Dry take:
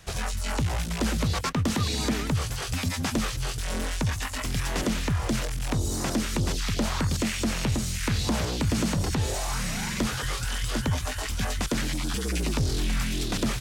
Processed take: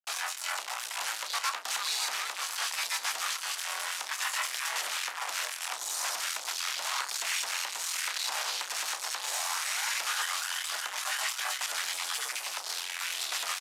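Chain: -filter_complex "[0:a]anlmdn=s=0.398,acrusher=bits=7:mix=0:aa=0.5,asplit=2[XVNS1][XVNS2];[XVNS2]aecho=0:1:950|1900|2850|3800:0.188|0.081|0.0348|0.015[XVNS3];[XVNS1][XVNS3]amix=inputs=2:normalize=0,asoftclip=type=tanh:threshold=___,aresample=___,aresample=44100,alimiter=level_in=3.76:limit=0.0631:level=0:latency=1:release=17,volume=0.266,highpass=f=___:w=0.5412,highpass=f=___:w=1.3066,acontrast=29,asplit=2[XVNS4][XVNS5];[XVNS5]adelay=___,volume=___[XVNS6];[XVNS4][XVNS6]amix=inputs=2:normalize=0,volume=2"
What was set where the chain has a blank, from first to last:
0.0282, 32000, 840, 840, 31, 0.251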